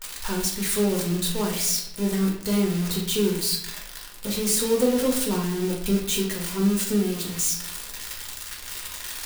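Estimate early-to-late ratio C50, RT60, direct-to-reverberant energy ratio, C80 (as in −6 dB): 5.5 dB, 0.80 s, −2.0 dB, 8.5 dB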